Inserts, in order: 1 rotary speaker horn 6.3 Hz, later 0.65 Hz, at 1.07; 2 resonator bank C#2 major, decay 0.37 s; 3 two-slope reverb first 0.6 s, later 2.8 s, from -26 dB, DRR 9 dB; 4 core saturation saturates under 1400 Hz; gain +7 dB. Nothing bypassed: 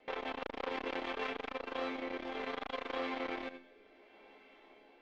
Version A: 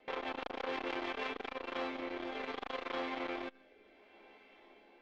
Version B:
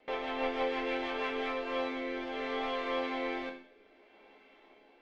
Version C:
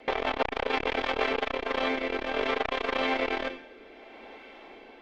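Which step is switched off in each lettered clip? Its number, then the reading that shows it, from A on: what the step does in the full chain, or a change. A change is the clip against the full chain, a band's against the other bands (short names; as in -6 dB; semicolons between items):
3, crest factor change -1.5 dB; 4, crest factor change -5.0 dB; 2, 250 Hz band -3.5 dB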